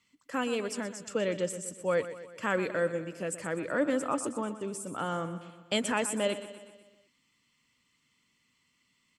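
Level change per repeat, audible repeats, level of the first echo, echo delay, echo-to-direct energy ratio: -5.0 dB, 5, -13.0 dB, 123 ms, -11.5 dB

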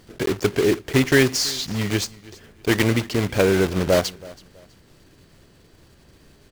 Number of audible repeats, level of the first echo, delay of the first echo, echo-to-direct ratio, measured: 2, -21.5 dB, 326 ms, -21.0 dB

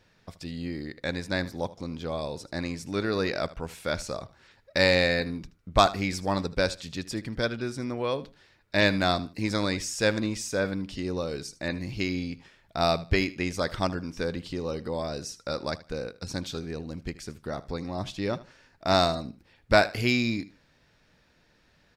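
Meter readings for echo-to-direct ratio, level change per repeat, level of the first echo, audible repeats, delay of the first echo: -18.0 dB, -13.0 dB, -18.0 dB, 2, 77 ms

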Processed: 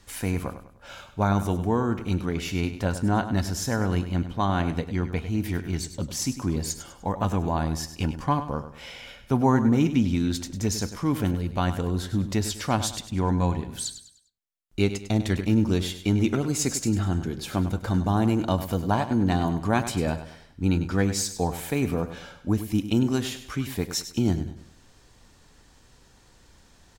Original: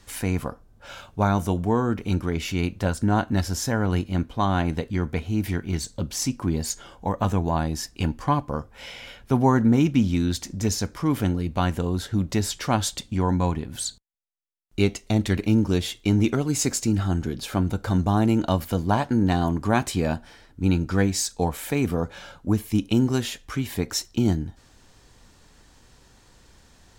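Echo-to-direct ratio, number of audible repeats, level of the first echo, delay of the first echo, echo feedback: -11.0 dB, 3, -11.5 dB, 100 ms, 38%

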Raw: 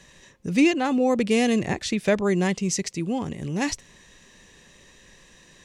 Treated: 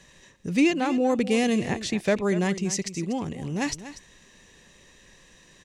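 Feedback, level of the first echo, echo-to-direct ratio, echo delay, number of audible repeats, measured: no regular repeats, -13.5 dB, -13.5 dB, 241 ms, 1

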